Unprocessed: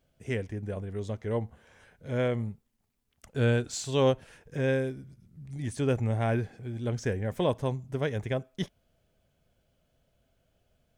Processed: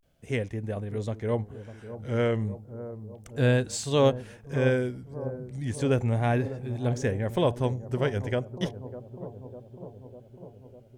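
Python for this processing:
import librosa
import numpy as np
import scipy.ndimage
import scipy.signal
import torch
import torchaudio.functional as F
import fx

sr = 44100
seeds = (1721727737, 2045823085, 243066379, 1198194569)

y = fx.vibrato(x, sr, rate_hz=0.34, depth_cents=94.0)
y = fx.echo_bbd(y, sr, ms=600, stages=4096, feedback_pct=68, wet_db=-13)
y = F.gain(torch.from_numpy(y), 2.5).numpy()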